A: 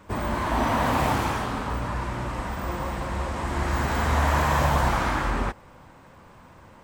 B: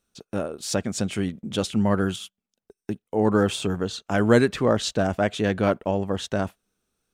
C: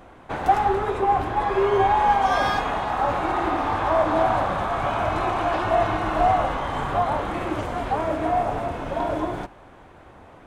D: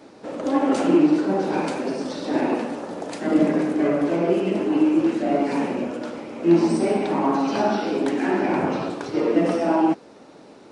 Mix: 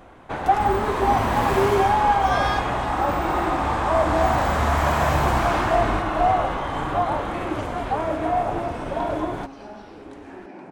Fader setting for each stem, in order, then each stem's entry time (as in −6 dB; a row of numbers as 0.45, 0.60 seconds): −0.5 dB, muted, 0.0 dB, −19.0 dB; 0.50 s, muted, 0.00 s, 2.05 s